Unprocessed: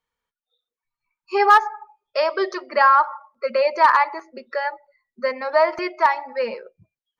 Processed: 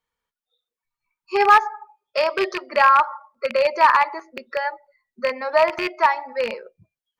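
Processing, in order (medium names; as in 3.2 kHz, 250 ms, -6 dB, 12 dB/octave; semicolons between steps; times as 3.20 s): rattle on loud lows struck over -38 dBFS, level -14 dBFS; 1.65–2.28 s: high-pass 140 Hz 6 dB/octave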